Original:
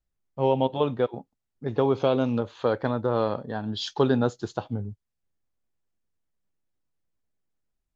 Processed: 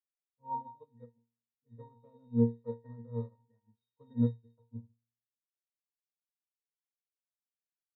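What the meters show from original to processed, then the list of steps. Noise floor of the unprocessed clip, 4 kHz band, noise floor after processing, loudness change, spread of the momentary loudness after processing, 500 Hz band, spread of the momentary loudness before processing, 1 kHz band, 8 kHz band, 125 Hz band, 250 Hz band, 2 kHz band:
-82 dBFS, under -35 dB, under -85 dBFS, -8.5 dB, 24 LU, -18.0 dB, 11 LU, -14.0 dB, n/a, -7.0 dB, -7.5 dB, under -35 dB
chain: octave resonator A#, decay 0.6 s; flutter echo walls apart 7.2 m, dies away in 0.21 s; upward expander 2.5:1, over -54 dBFS; gain +7.5 dB

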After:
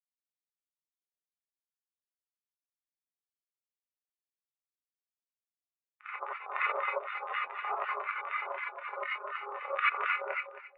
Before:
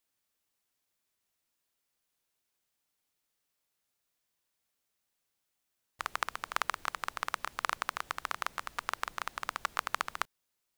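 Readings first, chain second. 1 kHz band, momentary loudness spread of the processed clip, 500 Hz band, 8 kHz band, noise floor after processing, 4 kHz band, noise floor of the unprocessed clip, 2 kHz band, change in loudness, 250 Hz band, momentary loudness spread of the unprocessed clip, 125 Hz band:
+1.5 dB, 9 LU, +9.5 dB, under -30 dB, under -85 dBFS, -6.0 dB, -83 dBFS, +3.5 dB, +2.5 dB, n/a, 4 LU, under -35 dB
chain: regenerating reverse delay 0.135 s, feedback 71%, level -2 dB; small resonant body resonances 380/830/3600 Hz, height 7 dB, ringing for 35 ms; LFO band-pass square 4 Hz 510–2400 Hz; narrowing echo 0.243 s, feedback 83%, band-pass 710 Hz, level -18 dB; non-linear reverb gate 0.11 s rising, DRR -5.5 dB; spectral expander 2.5:1

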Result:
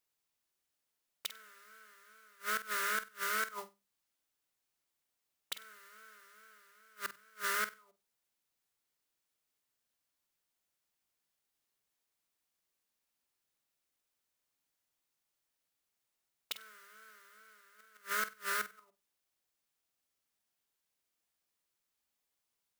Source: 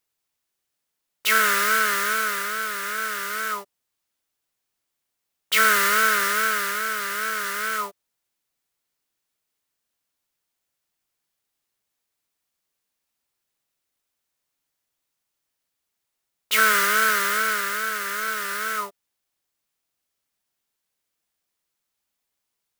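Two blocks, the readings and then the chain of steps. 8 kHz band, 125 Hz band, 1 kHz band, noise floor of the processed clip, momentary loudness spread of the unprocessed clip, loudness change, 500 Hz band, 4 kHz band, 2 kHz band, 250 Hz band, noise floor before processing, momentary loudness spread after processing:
-18.0 dB, n/a, -18.5 dB, under -85 dBFS, 9 LU, -16.5 dB, -18.0 dB, -17.5 dB, -19.0 dB, -19.5 dB, -81 dBFS, 22 LU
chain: flipped gate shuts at -17 dBFS, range -33 dB; notches 50/100/150/200 Hz; flutter echo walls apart 8.2 m, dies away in 0.23 s; gain -5.5 dB

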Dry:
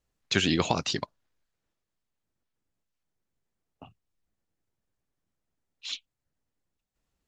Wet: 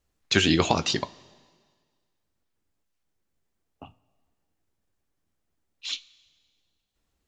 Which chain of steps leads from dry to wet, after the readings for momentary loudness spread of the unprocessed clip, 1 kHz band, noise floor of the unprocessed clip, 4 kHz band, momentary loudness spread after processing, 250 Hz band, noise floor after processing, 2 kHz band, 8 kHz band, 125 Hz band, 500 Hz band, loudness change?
16 LU, +4.0 dB, -85 dBFS, +4.0 dB, 16 LU, +4.0 dB, -78 dBFS, +4.0 dB, +4.0 dB, +3.5 dB, +4.5 dB, +4.0 dB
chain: two-slope reverb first 0.2 s, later 1.7 s, from -18 dB, DRR 11.5 dB; gain +3.5 dB

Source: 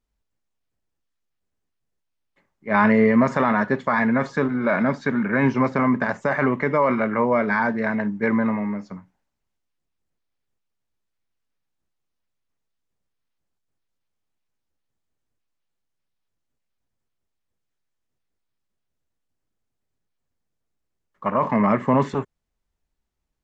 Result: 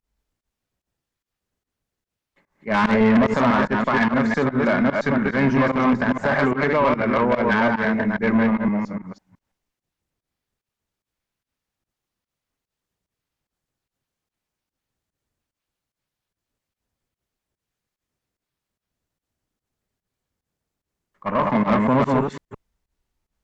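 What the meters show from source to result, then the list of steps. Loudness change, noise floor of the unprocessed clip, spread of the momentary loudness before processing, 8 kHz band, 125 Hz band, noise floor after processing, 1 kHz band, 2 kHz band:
+1.5 dB, -79 dBFS, 8 LU, n/a, +1.5 dB, under -85 dBFS, +1.0 dB, +1.5 dB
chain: reverse delay 0.167 s, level -2 dB; tube stage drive 14 dB, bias 0.25; pump 147 bpm, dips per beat 1, -20 dB, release 96 ms; gain +2.5 dB

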